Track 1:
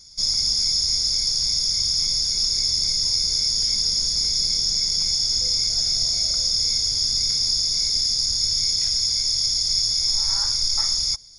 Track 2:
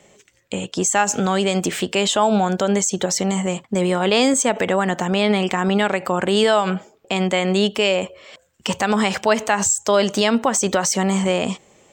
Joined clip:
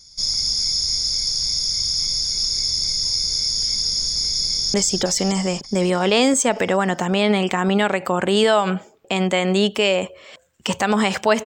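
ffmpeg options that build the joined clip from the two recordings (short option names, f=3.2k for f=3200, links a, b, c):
-filter_complex "[0:a]apad=whole_dur=11.45,atrim=end=11.45,atrim=end=4.742[a];[1:a]atrim=start=2.738:end=9.45[b];[a][b]acrossfade=d=0.004:c1=hsin:c2=hsin,asplit=2[c][d];[d]afade=t=in:st=4.47:d=0.01,afade=t=out:st=4.74:d=0.01,aecho=0:1:290|580|870|1160|1450|1740|2030|2320|2610:0.668344|0.401006|0.240604|0.144362|0.0866174|0.0519704|0.0311823|0.0187094|0.0112256[e];[c][e]amix=inputs=2:normalize=0"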